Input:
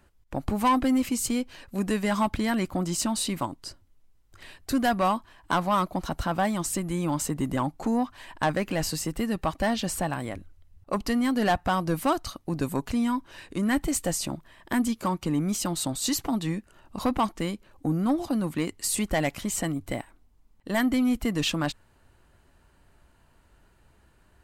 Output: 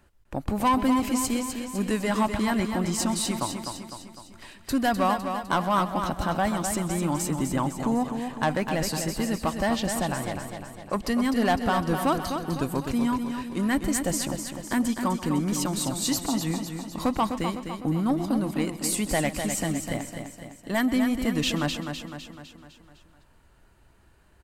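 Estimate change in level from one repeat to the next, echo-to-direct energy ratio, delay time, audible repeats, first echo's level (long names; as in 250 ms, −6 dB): repeats not evenly spaced, −5.0 dB, 131 ms, 9, −17.0 dB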